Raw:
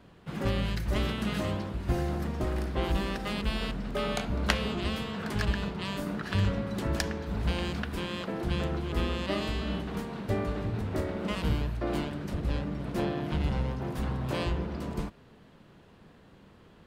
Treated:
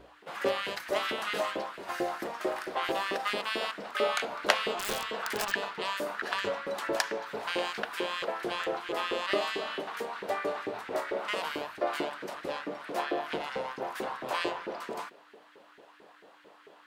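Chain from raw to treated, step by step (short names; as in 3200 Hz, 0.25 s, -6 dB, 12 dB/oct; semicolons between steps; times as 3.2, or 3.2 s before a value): LFO high-pass saw up 4.5 Hz 370–1900 Hz; hum 60 Hz, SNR 23 dB; 4.71–5.52 wrapped overs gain 25 dB; notches 60/120/180/240 Hz; gain +1.5 dB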